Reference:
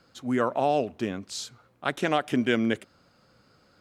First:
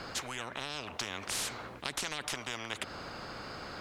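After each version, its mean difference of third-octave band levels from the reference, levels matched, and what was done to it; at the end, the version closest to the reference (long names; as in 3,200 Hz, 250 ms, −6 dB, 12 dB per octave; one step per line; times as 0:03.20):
16.5 dB: low-pass filter 3,000 Hz 6 dB per octave
downward compressor, threshold −31 dBFS, peak gain reduction 12 dB
every bin compressed towards the loudest bin 10 to 1
level +2.5 dB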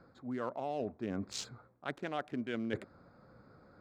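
5.5 dB: adaptive Wiener filter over 15 samples
high-shelf EQ 7,600 Hz −8 dB
reversed playback
downward compressor 10 to 1, threshold −37 dBFS, peak gain reduction 18.5 dB
reversed playback
level +3 dB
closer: second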